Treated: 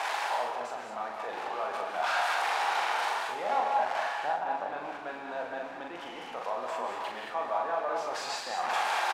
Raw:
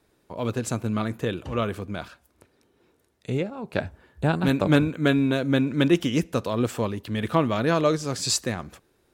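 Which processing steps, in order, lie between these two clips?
spike at every zero crossing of −16 dBFS
low-pass filter 1,800 Hz 12 dB per octave
reversed playback
downward compressor 10 to 1, threshold −36 dBFS, peak gain reduction 22.5 dB
reversed playback
brickwall limiter −32.5 dBFS, peak gain reduction 8 dB
high-pass with resonance 780 Hz, resonance Q 5.2
double-tracking delay 41 ms −4 dB
on a send: echo with shifted repeats 99 ms, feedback 46%, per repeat −82 Hz, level −17 dB
on the sum: reverb whose tail is shaped and stops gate 240 ms rising, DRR 2.5 dB
level +6.5 dB

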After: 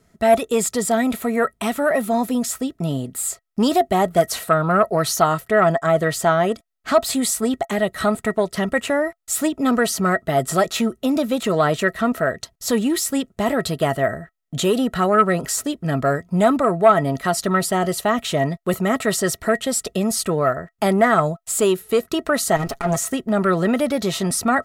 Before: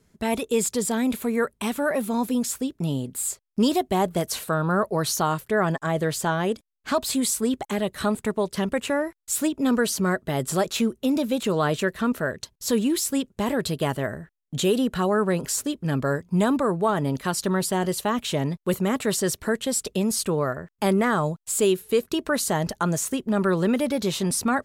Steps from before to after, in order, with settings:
0:22.56–0:22.96: lower of the sound and its delayed copy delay 7.2 ms
hollow resonant body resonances 680/1,300/1,900 Hz, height 15 dB, ringing for 75 ms
saturating transformer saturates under 540 Hz
level +3 dB

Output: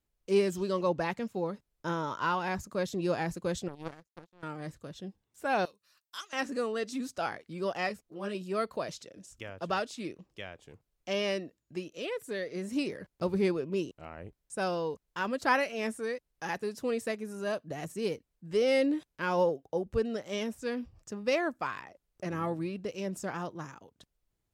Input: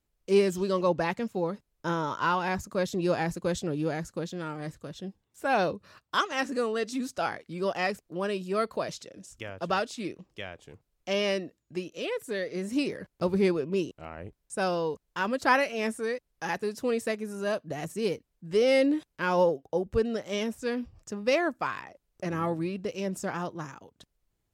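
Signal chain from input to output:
0:03.68–0:04.43: power curve on the samples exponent 3
0:05.65–0:06.33: first-order pre-emphasis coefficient 0.97
0:07.89–0:08.35: string-ensemble chorus
level −3.5 dB

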